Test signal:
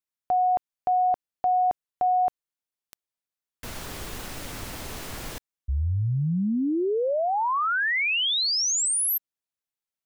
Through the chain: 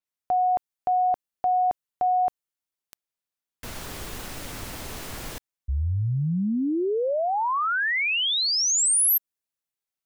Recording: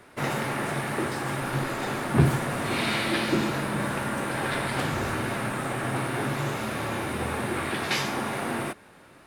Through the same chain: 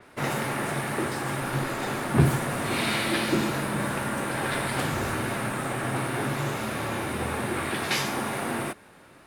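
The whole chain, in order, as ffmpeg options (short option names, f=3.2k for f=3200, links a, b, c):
-af "adynamicequalizer=threshold=0.00891:dfrequency=6900:dqfactor=0.7:tfrequency=6900:tqfactor=0.7:attack=5:release=100:ratio=0.375:range=2.5:mode=boostabove:tftype=highshelf"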